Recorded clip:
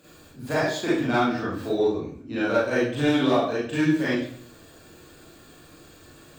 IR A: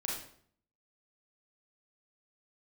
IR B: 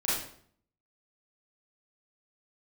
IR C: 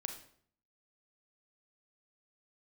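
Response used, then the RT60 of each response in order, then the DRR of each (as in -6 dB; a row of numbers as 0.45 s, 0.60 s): B; 0.60 s, 0.60 s, 0.60 s; -3.5 dB, -9.5 dB, 5.0 dB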